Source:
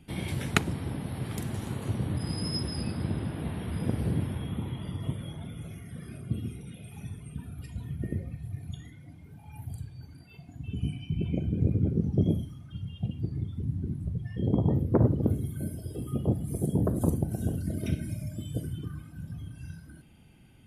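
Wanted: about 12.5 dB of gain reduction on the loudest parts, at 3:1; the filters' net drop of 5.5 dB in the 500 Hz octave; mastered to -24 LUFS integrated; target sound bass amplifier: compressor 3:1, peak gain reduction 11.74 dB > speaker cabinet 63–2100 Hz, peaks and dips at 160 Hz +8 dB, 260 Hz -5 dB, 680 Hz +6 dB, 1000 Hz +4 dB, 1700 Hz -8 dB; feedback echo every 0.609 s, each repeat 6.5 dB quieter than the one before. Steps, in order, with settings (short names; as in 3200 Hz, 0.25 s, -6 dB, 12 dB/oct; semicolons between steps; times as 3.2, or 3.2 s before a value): bell 500 Hz -9 dB; compressor 3:1, threshold -37 dBFS; feedback echo 0.609 s, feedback 47%, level -6.5 dB; compressor 3:1, threshold -45 dBFS; speaker cabinet 63–2100 Hz, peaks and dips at 160 Hz +8 dB, 260 Hz -5 dB, 680 Hz +6 dB, 1000 Hz +4 dB, 1700 Hz -8 dB; gain +21 dB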